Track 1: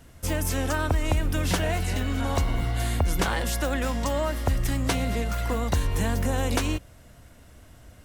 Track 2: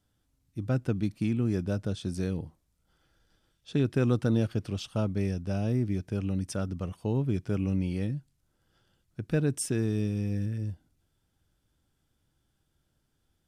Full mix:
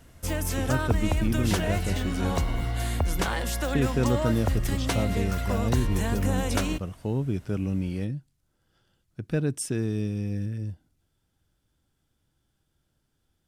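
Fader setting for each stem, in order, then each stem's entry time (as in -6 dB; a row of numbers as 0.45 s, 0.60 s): -2.0 dB, +0.5 dB; 0.00 s, 0.00 s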